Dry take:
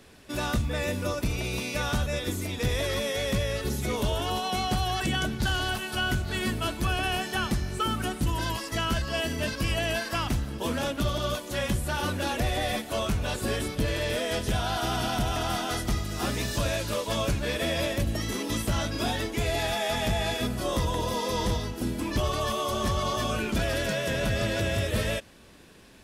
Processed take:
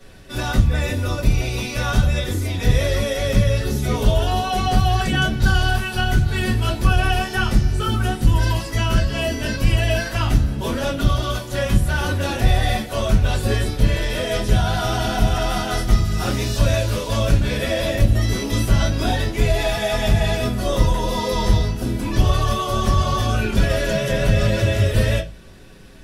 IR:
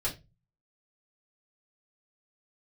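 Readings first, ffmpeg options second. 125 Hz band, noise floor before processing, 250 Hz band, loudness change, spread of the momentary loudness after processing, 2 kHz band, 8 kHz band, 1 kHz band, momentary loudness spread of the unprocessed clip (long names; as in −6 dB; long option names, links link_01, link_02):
+12.0 dB, −40 dBFS, +7.0 dB, +8.5 dB, 4 LU, +6.0 dB, +4.0 dB, +6.0 dB, 3 LU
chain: -filter_complex "[1:a]atrim=start_sample=2205,asetrate=48510,aresample=44100[link_01];[0:a][link_01]afir=irnorm=-1:irlink=0,volume=1.5dB"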